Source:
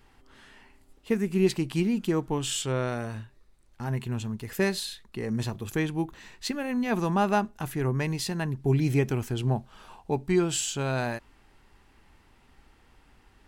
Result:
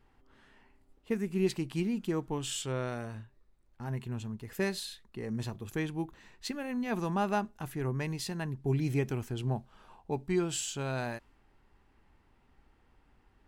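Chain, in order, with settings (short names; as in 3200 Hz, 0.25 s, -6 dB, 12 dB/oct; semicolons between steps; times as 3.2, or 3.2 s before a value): mismatched tape noise reduction decoder only; gain -6 dB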